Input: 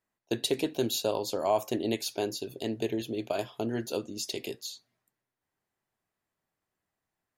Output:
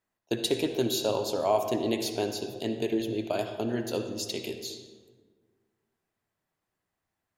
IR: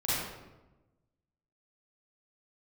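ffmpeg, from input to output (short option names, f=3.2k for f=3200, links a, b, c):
-filter_complex "[0:a]asplit=2[a][b];[b]lowpass=7.1k[c];[1:a]atrim=start_sample=2205,asetrate=29106,aresample=44100[d];[c][d]afir=irnorm=-1:irlink=0,volume=-17.5dB[e];[a][e]amix=inputs=2:normalize=0"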